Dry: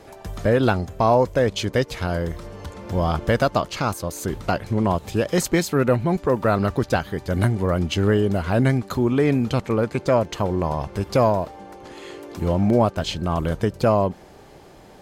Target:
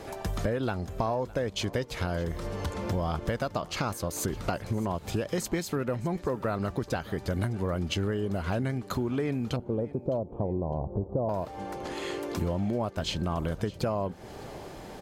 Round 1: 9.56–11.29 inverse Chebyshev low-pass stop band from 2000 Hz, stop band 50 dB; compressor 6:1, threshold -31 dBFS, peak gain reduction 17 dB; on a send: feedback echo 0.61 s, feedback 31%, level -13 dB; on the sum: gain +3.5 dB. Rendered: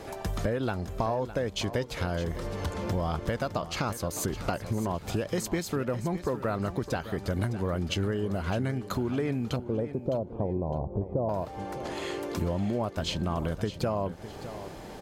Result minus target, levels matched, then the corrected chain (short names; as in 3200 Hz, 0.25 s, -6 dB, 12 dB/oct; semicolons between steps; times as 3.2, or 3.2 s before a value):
echo-to-direct +7 dB
9.56–11.29 inverse Chebyshev low-pass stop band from 2000 Hz, stop band 50 dB; compressor 6:1, threshold -31 dBFS, peak gain reduction 17 dB; on a send: feedback echo 0.61 s, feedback 31%, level -20 dB; on the sum: gain +3.5 dB